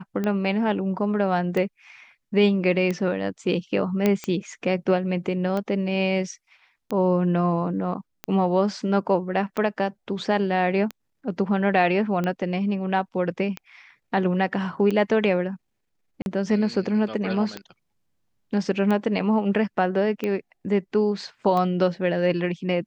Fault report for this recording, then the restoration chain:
tick 45 rpm -15 dBFS
4.06 s: pop -8 dBFS
16.22–16.26 s: dropout 41 ms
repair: de-click; interpolate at 16.22 s, 41 ms

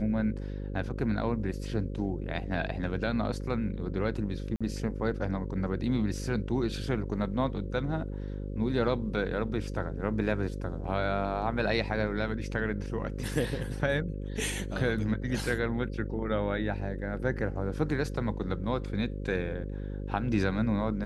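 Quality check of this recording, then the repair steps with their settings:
buzz 50 Hz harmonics 11 -36 dBFS
4.56–4.61 s: dropout 46 ms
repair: de-hum 50 Hz, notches 11; interpolate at 4.56 s, 46 ms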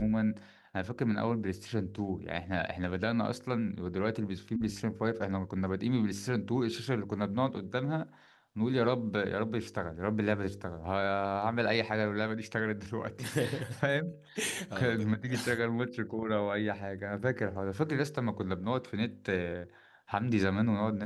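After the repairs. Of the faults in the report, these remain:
nothing left

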